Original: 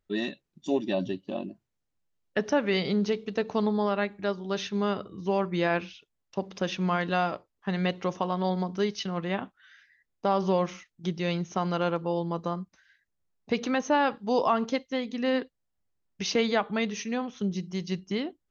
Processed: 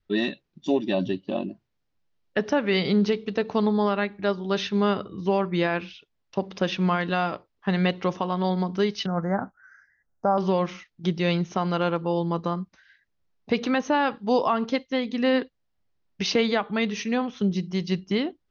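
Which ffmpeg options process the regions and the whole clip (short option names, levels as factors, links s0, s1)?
-filter_complex "[0:a]asettb=1/sr,asplit=3[s0][s1][s2];[s0]atrim=end=9.064[s3];[s1]atrim=start=9.06:end=10.38,asetpts=PTS-STARTPTS,afade=t=in:d=0.004:c=qsin,afade=t=out:st=1.316:d=0.004:c=qsin,asuperstop=centerf=3200:order=8:qfactor=0.76,aecho=1:1:1.4:0.35,atrim=end_sample=58212[s4];[s2]atrim=start=10.376[s5];[s3][s4]acrossfade=d=0.004:c1=hsin:c2=qsin[s6];[s6][s5]acrossfade=d=0.004:c1=qsin:c2=hsin,alimiter=limit=0.133:level=0:latency=1:release=417,lowpass=f=5400:w=0.5412,lowpass=f=5400:w=1.3066,adynamicequalizer=threshold=0.01:dfrequency=620:dqfactor=2:tfrequency=620:tqfactor=2:attack=5:release=100:ratio=0.375:range=2:mode=cutabove:tftype=bell,volume=1.88"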